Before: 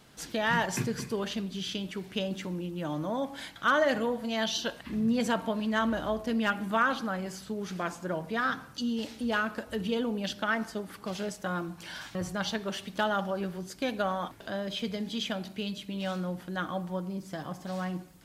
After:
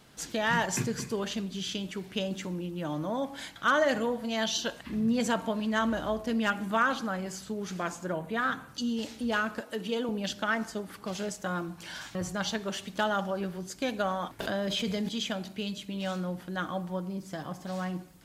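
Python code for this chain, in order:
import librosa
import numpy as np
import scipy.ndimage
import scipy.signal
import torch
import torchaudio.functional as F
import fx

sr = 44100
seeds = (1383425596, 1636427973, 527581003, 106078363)

y = fx.peak_eq(x, sr, hz=5200.0, db=-13.0, octaves=0.35, at=(8.12, 8.68))
y = fx.highpass(y, sr, hz=240.0, slope=12, at=(9.6, 10.09))
y = fx.dynamic_eq(y, sr, hz=7000.0, q=2.6, threshold_db=-58.0, ratio=4.0, max_db=6)
y = fx.env_flatten(y, sr, amount_pct=70, at=(14.39, 15.09))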